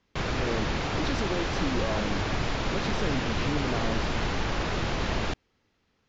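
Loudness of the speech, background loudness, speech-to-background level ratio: -34.5 LUFS, -30.0 LUFS, -4.5 dB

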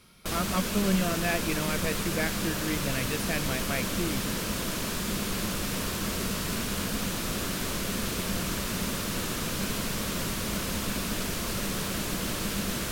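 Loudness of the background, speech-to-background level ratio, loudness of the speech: -30.5 LUFS, -1.5 dB, -32.0 LUFS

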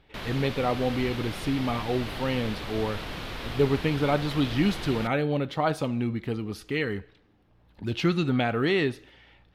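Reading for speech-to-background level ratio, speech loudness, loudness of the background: 8.5 dB, -28.0 LUFS, -36.5 LUFS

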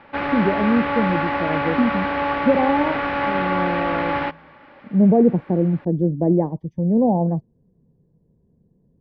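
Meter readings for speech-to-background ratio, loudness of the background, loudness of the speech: 2.0 dB, -23.0 LUFS, -21.0 LUFS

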